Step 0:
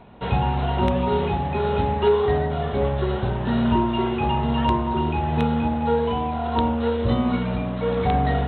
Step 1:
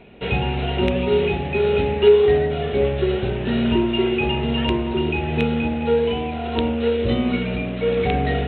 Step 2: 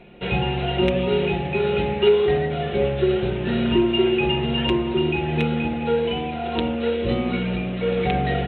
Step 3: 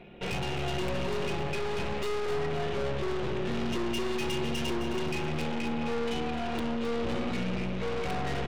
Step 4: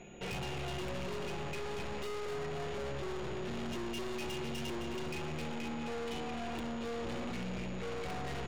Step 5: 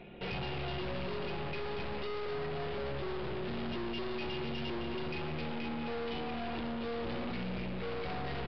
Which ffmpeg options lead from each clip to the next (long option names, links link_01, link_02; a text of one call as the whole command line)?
ffmpeg -i in.wav -af "equalizer=frequency=100:width_type=o:width=0.67:gain=-3,equalizer=frequency=400:width_type=o:width=0.67:gain=7,equalizer=frequency=1000:width_type=o:width=0.67:gain=-10,equalizer=frequency=2500:width_type=o:width=0.67:gain=11" out.wav
ffmpeg -i in.wav -af "aecho=1:1:5.7:0.54,volume=-1.5dB" out.wav
ffmpeg -i in.wav -af "aeval=exprs='(tanh(35.5*val(0)+0.65)-tanh(0.65))/35.5':channel_layout=same,aecho=1:1:262|524|786|1048:0.316|0.123|0.0481|0.0188" out.wav
ffmpeg -i in.wav -af "asoftclip=type=tanh:threshold=-33dB,aeval=exprs='val(0)+0.000794*sin(2*PI*6800*n/s)':channel_layout=same,volume=-2dB" out.wav
ffmpeg -i in.wav -af "aresample=11025,aresample=44100,volume=1.5dB" out.wav